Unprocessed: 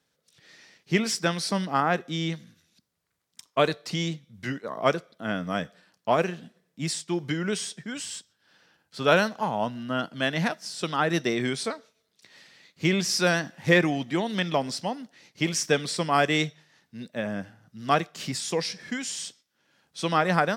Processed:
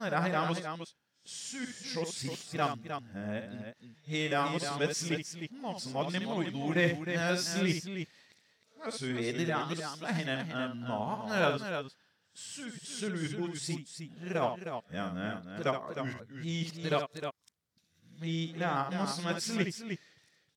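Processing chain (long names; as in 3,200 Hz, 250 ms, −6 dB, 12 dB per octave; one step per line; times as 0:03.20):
played backwards from end to start
parametric band 86 Hz +5.5 dB 1.8 octaves
on a send: multi-tap delay 67/310 ms −8/−7.5 dB
on the sum: level −9 dB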